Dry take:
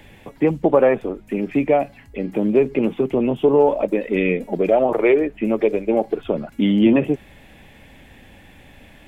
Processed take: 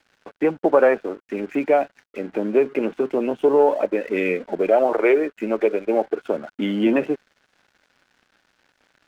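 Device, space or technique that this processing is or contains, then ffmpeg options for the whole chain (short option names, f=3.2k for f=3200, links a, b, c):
pocket radio on a weak battery: -af "highpass=310,lowpass=3k,aeval=exprs='sgn(val(0))*max(abs(val(0))-0.00473,0)':c=same,equalizer=f=1.5k:t=o:w=0.3:g=9.5"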